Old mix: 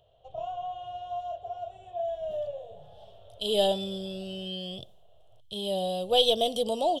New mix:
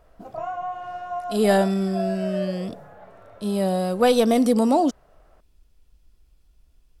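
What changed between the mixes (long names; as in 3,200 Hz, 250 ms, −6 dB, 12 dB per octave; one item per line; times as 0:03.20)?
speech: entry −2.10 s
master: remove drawn EQ curve 120 Hz 0 dB, 260 Hz −22 dB, 400 Hz −8 dB, 680 Hz −3 dB, 1,300 Hz −22 dB, 2,200 Hz −21 dB, 3,200 Hz +13 dB, 4,600 Hz −7 dB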